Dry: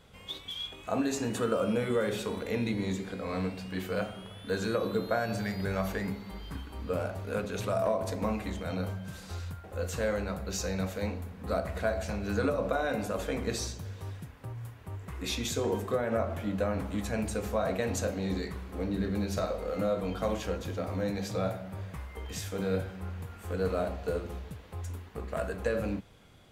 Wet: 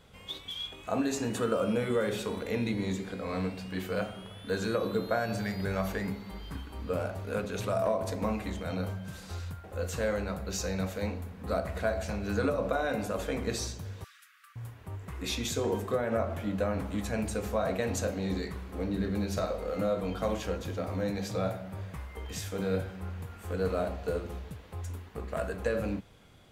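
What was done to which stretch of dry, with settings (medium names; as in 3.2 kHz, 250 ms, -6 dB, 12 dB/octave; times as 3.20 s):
14.04–14.56 s: brick-wall FIR high-pass 1.1 kHz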